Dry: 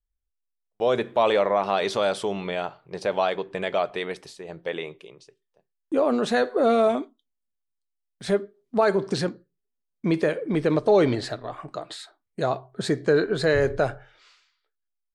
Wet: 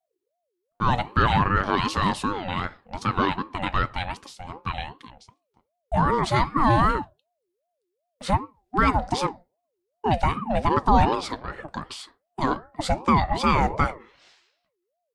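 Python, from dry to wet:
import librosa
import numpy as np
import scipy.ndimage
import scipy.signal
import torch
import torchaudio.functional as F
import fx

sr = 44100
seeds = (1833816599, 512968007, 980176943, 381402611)

y = fx.ring_lfo(x, sr, carrier_hz=530.0, swing_pct=35, hz=2.6)
y = F.gain(torch.from_numpy(y), 3.5).numpy()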